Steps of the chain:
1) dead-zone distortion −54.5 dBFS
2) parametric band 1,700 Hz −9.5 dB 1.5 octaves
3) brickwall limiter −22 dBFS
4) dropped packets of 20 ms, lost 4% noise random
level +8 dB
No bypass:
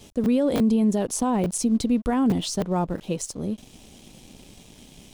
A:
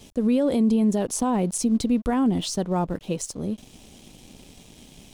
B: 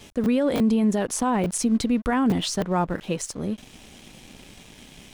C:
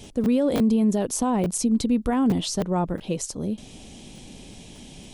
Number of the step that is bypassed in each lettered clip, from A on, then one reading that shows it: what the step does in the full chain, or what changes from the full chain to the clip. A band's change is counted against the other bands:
4, change in crest factor −2.0 dB
2, 2 kHz band +6.5 dB
1, change in momentary loudness spread +13 LU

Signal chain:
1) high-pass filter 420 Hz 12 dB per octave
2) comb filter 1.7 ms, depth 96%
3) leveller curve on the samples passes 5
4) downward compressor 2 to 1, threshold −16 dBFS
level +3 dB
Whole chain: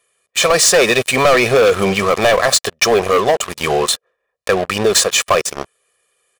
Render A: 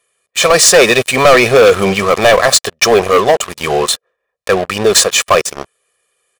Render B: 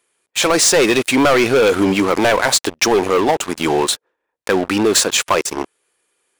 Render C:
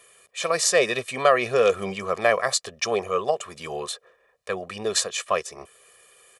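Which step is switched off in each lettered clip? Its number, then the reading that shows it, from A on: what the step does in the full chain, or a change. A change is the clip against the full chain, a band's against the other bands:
4, average gain reduction 3.0 dB
2, 250 Hz band +7.5 dB
3, change in crest factor +10.5 dB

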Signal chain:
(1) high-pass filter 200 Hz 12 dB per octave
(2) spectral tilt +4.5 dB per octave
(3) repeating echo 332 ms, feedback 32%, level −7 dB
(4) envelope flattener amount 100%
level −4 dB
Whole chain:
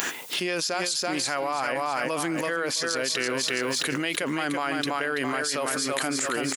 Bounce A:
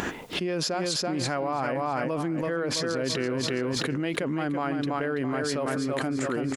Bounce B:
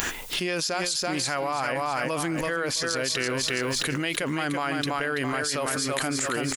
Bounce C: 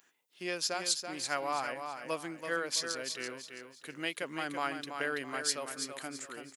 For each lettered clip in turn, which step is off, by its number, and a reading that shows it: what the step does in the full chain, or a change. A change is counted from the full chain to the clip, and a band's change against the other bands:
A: 2, 125 Hz band +10.5 dB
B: 1, 125 Hz band +6.0 dB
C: 4, change in crest factor −6.0 dB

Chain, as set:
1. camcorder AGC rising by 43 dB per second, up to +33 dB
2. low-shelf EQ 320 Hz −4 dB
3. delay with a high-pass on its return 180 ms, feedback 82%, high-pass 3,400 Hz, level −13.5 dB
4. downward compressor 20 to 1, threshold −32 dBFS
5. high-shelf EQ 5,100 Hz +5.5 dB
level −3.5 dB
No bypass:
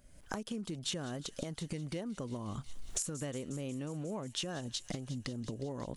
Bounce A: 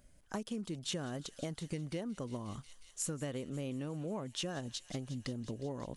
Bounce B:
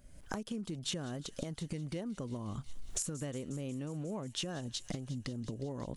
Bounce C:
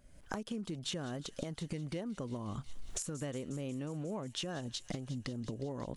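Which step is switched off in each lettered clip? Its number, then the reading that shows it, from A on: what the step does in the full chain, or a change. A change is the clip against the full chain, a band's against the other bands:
1, 8 kHz band −2.0 dB
2, 125 Hz band +2.0 dB
5, 8 kHz band −3.5 dB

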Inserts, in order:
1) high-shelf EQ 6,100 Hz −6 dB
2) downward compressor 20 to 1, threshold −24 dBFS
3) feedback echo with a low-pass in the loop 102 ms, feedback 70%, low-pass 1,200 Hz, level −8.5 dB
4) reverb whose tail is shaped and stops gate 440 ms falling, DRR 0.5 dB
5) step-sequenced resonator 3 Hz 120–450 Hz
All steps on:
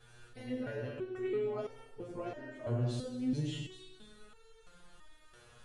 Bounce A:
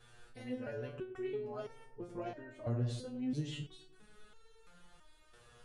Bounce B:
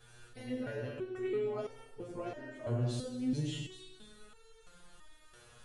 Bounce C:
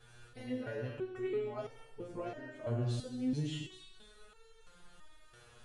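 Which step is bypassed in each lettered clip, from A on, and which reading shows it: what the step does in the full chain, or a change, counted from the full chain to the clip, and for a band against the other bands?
4, change in momentary loudness spread −5 LU
1, 8 kHz band +3.5 dB
3, change in momentary loudness spread −4 LU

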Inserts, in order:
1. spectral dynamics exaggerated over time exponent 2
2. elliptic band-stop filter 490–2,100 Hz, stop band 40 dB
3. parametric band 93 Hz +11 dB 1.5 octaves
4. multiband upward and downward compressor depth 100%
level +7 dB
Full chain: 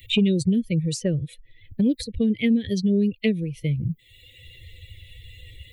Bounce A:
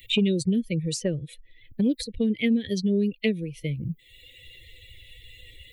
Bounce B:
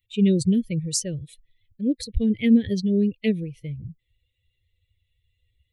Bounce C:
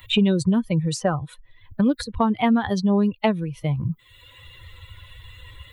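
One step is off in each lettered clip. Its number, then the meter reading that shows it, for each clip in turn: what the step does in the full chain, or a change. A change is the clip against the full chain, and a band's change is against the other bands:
3, 125 Hz band −4.0 dB
4, change in crest factor +2.0 dB
2, 2 kHz band +2.0 dB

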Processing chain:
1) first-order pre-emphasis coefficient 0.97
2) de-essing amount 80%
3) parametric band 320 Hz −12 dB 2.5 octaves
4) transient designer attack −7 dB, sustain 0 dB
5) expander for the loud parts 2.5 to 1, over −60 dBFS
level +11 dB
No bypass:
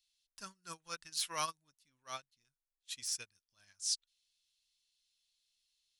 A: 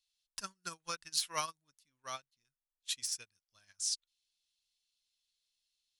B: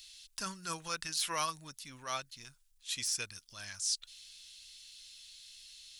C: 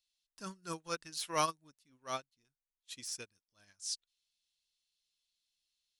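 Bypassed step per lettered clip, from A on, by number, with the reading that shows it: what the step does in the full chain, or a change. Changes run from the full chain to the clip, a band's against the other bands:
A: 4, change in momentary loudness spread −1 LU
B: 5, 250 Hz band +5.5 dB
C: 3, 8 kHz band −10.0 dB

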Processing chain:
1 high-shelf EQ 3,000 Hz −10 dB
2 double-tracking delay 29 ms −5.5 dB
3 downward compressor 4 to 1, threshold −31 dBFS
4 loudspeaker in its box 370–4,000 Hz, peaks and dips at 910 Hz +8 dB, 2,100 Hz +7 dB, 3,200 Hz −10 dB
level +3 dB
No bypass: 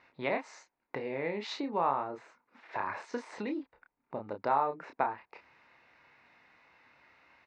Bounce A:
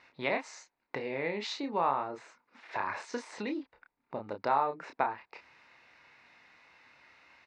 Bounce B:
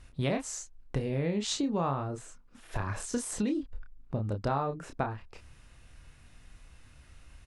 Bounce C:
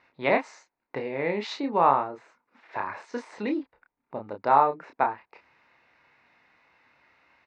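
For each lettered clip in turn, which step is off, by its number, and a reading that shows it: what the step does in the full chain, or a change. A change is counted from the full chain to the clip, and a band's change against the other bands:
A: 1, 4 kHz band +3.5 dB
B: 4, 125 Hz band +16.5 dB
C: 3, average gain reduction 2.5 dB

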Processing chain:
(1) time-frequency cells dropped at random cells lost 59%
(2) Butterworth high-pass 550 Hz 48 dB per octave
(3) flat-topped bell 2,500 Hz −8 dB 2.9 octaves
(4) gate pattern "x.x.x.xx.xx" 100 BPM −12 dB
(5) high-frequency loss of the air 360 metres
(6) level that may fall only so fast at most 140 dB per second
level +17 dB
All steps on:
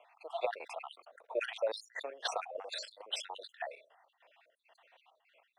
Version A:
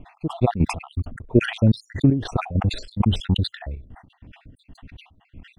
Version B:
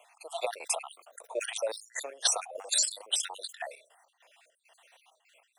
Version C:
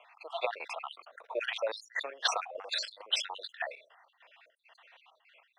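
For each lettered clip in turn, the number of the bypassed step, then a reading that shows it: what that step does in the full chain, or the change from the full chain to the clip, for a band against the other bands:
2, 250 Hz band +29.5 dB
5, 8 kHz band +19.5 dB
3, 500 Hz band −6.5 dB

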